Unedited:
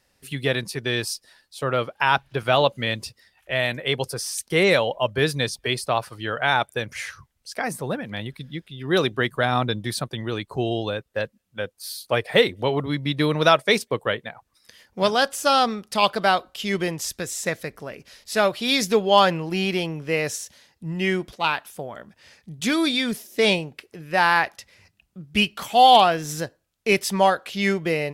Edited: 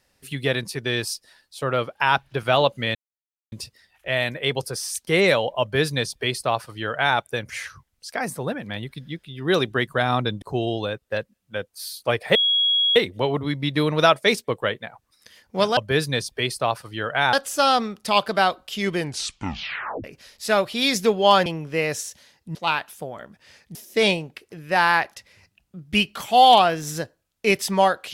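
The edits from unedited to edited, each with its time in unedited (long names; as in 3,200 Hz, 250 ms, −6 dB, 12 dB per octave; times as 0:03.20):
0:02.95: splice in silence 0.57 s
0:05.04–0:06.60: duplicate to 0:15.20
0:09.85–0:10.46: remove
0:12.39: insert tone 3,320 Hz −16.5 dBFS 0.61 s
0:16.83: tape stop 1.08 s
0:19.33–0:19.81: remove
0:20.90–0:21.32: remove
0:22.52–0:23.17: remove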